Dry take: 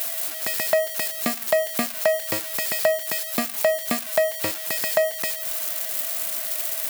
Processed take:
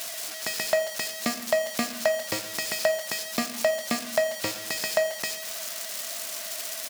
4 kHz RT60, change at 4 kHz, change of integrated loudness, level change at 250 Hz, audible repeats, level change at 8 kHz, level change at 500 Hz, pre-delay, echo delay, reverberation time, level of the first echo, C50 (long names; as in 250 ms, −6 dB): 0.65 s, 0.0 dB, −4.5 dB, −1.5 dB, 1, −2.5 dB, −3.5 dB, 13 ms, 138 ms, 1.2 s, −19.0 dB, 11.5 dB